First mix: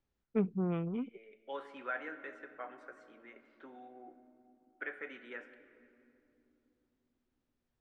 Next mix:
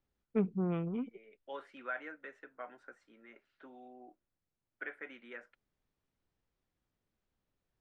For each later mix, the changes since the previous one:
reverb: off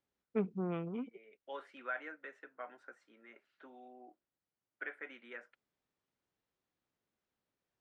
master: add HPF 270 Hz 6 dB/oct

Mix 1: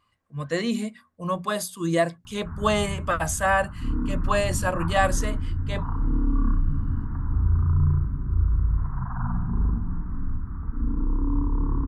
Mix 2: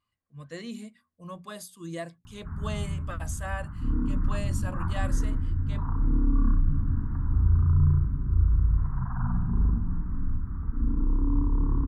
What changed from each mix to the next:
speech -11.0 dB; master: add bell 840 Hz -4.5 dB 2.5 oct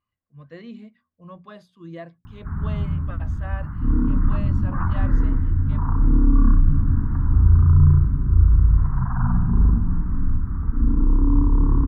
speech: add air absorption 310 m; background +7.5 dB

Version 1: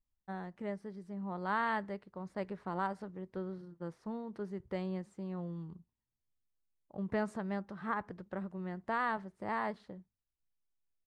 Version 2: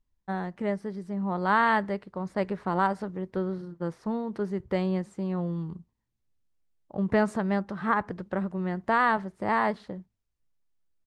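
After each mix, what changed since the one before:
first voice +10.5 dB; second voice +9.5 dB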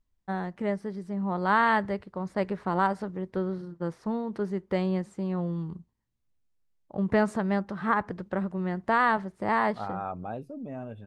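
second voice: entry -2.75 s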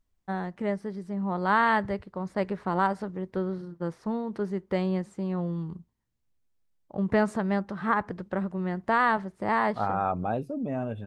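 second voice +7.0 dB

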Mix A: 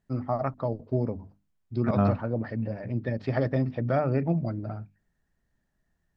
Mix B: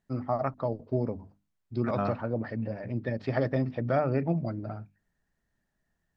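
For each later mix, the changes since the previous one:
second voice: add low shelf 480 Hz -8.5 dB; master: add low shelf 190 Hz -4.5 dB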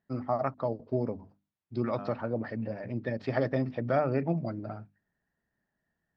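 second voice -12.0 dB; master: add HPF 130 Hz 6 dB/oct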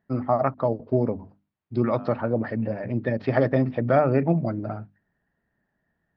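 first voice +8.0 dB; master: add air absorption 180 m

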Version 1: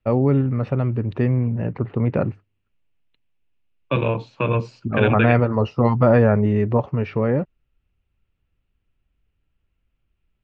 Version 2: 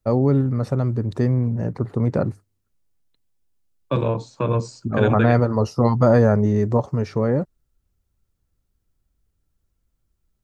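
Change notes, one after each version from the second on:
first voice: add high shelf 3900 Hz +7.5 dB; master: remove synth low-pass 2700 Hz, resonance Q 4.5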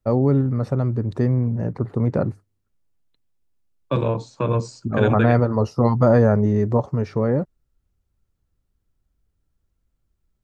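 first voice: add high shelf 3900 Hz -7.5 dB

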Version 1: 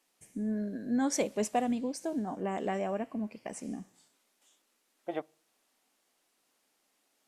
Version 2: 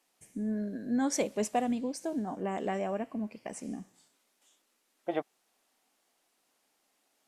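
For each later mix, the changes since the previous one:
second voice +5.5 dB; reverb: off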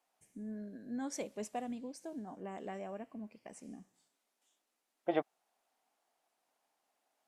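first voice -10.5 dB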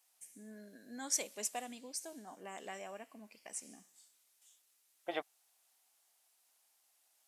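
second voice -3.0 dB; master: add tilt +4.5 dB/oct

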